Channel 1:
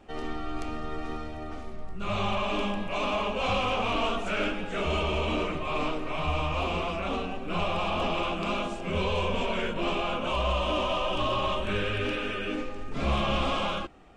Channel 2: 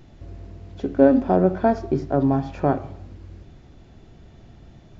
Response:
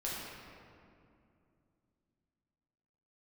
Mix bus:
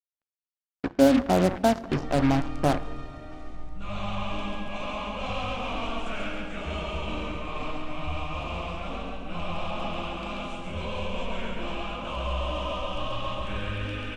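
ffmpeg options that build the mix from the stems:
-filter_complex "[0:a]lowshelf=frequency=130:gain=5,adelay=1800,volume=-6.5dB,asplit=2[link_01][link_02];[link_02]volume=-3dB[link_03];[1:a]acrusher=bits=3:mix=0:aa=0.5,volume=-3dB,asplit=2[link_04][link_05];[link_05]volume=-20dB[link_06];[2:a]atrim=start_sample=2205[link_07];[link_06][link_07]afir=irnorm=-1:irlink=0[link_08];[link_03]aecho=0:1:137|274|411|548|685|822|959|1096:1|0.52|0.27|0.141|0.0731|0.038|0.0198|0.0103[link_09];[link_01][link_04][link_08][link_09]amix=inputs=4:normalize=0,equalizer=frequency=400:width_type=o:width=0.21:gain=-10"

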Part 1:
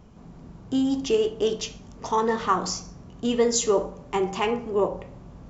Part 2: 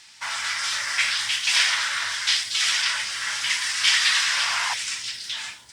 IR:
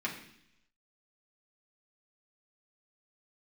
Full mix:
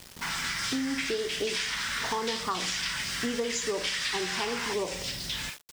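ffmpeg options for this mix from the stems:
-filter_complex "[0:a]volume=0.5dB[link_01];[1:a]volume=-2.5dB[link_02];[link_01][link_02]amix=inputs=2:normalize=0,acrusher=bits=6:mix=0:aa=0.000001,acompressor=threshold=-28dB:ratio=6"

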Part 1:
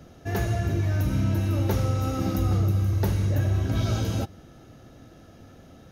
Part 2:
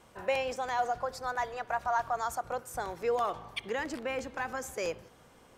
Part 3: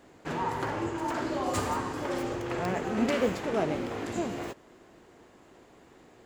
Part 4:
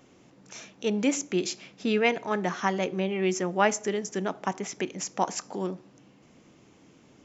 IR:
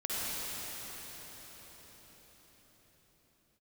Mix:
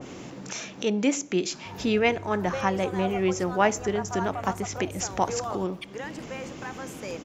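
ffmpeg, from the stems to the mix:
-filter_complex "[0:a]asoftclip=type=tanh:threshold=-21.5dB,adelay=1400,volume=-15.5dB[link_01];[1:a]adelay=2250,volume=-3dB[link_02];[2:a]asplit=2[link_03][link_04];[link_04]afreqshift=-1.3[link_05];[link_03][link_05]amix=inputs=2:normalize=1,adelay=1250,volume=-13.5dB[link_06];[3:a]acompressor=mode=upward:threshold=-28dB:ratio=2.5,volume=1.5dB[link_07];[link_01][link_02][link_06][link_07]amix=inputs=4:normalize=0,adynamicequalizer=threshold=0.02:dfrequency=1500:dqfactor=0.7:tfrequency=1500:tqfactor=0.7:attack=5:release=100:ratio=0.375:range=2:mode=cutabove:tftype=highshelf"

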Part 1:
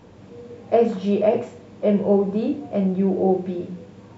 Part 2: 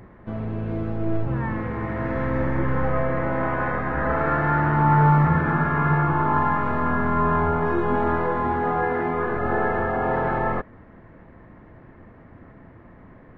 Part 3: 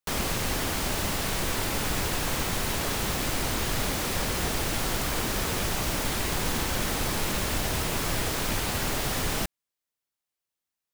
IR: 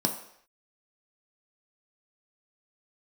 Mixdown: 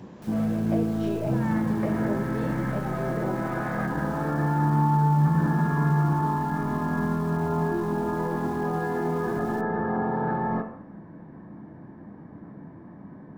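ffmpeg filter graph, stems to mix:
-filter_complex "[0:a]volume=-2.5dB,asplit=2[link_01][link_02];[1:a]alimiter=limit=-20dB:level=0:latency=1:release=64,volume=1dB,asplit=2[link_03][link_04];[link_04]volume=-12dB[link_05];[2:a]asoftclip=type=hard:threshold=-31dB,adelay=150,volume=-18.5dB[link_06];[link_02]apad=whole_len=589890[link_07];[link_03][link_07]sidechaingate=range=-33dB:threshold=-42dB:ratio=16:detection=peak[link_08];[link_01][link_08]amix=inputs=2:normalize=0,highpass=frequency=340:width=0.5412,highpass=frequency=340:width=1.3066,acompressor=threshold=-31dB:ratio=6,volume=0dB[link_09];[3:a]atrim=start_sample=2205[link_10];[link_05][link_10]afir=irnorm=-1:irlink=0[link_11];[link_06][link_09][link_11]amix=inputs=3:normalize=0"

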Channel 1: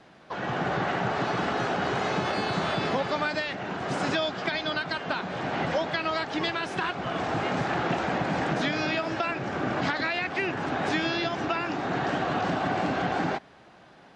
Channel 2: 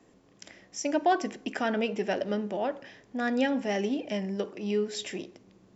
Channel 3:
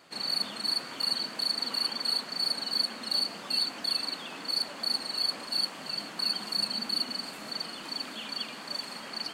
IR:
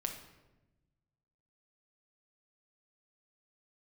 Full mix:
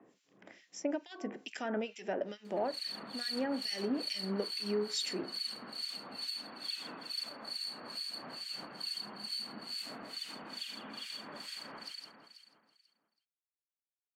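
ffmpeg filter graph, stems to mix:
-filter_complex "[1:a]highpass=180,acompressor=threshold=-29dB:ratio=10,volume=0.5dB[link_01];[2:a]acompressor=threshold=-29dB:ratio=6,adelay=2450,volume=0dB,asplit=2[link_02][link_03];[link_03]volume=-5.5dB[link_04];[link_02]acompressor=threshold=-41dB:ratio=6,volume=0dB[link_05];[link_04]aecho=0:1:163|326|489|652|815|978|1141|1304|1467:1|0.59|0.348|0.205|0.121|0.0715|0.0422|0.0249|0.0147[link_06];[link_01][link_05][link_06]amix=inputs=3:normalize=0,acrossover=split=2000[link_07][link_08];[link_07]aeval=exprs='val(0)*(1-1/2+1/2*cos(2*PI*2.3*n/s))':channel_layout=same[link_09];[link_08]aeval=exprs='val(0)*(1-1/2-1/2*cos(2*PI*2.3*n/s))':channel_layout=same[link_10];[link_09][link_10]amix=inputs=2:normalize=0"

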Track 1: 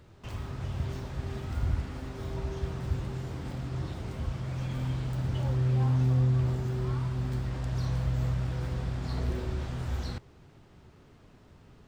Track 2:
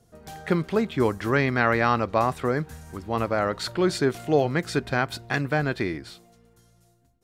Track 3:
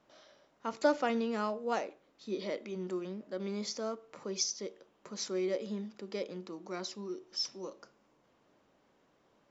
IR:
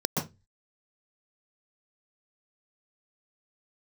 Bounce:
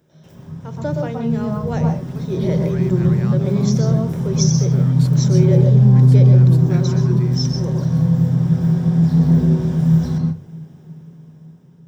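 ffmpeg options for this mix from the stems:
-filter_complex "[0:a]volume=-12.5dB,asplit=2[link_01][link_02];[link_02]volume=-4dB[link_03];[1:a]adelay=1400,volume=-13.5dB[link_04];[2:a]volume=-5.5dB,asplit=3[link_05][link_06][link_07];[link_06]volume=-7.5dB[link_08];[link_07]apad=whole_len=381017[link_09];[link_04][link_09]sidechaincompress=threshold=-48dB:ratio=8:attack=16:release=635[link_10];[link_01][link_10]amix=inputs=2:normalize=0,aemphasis=mode=production:type=50fm,acompressor=threshold=-49dB:ratio=2,volume=0dB[link_11];[3:a]atrim=start_sample=2205[link_12];[link_03][link_08]amix=inputs=2:normalize=0[link_13];[link_13][link_12]afir=irnorm=-1:irlink=0[link_14];[link_05][link_11][link_14]amix=inputs=3:normalize=0,equalizer=frequency=160:width_type=o:width=0.3:gain=14,dynaudnorm=framelen=530:gausssize=7:maxgain=12.5dB"

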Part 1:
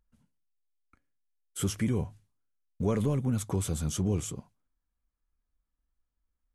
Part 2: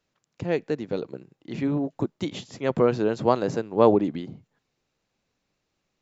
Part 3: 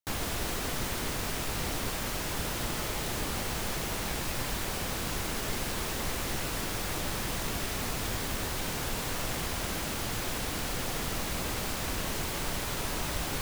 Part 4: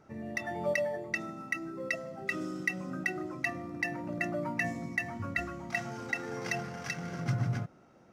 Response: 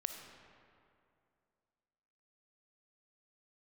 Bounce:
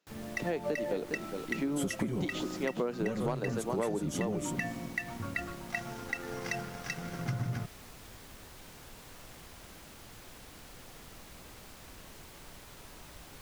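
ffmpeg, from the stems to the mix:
-filter_complex "[0:a]aecho=1:1:5.6:1,adelay=200,volume=-1dB[link_01];[1:a]highpass=frequency=170:width=0.5412,highpass=frequency=170:width=1.3066,volume=-1.5dB,asplit=2[link_02][link_03];[link_03]volume=-9.5dB[link_04];[2:a]volume=-17.5dB[link_05];[3:a]aeval=exprs='sgn(val(0))*max(abs(val(0))-0.00355,0)':channel_layout=same,volume=0.5dB[link_06];[link_04]aecho=0:1:409:1[link_07];[link_01][link_02][link_05][link_06][link_07]amix=inputs=5:normalize=0,volume=10.5dB,asoftclip=hard,volume=-10.5dB,acompressor=threshold=-29dB:ratio=8"

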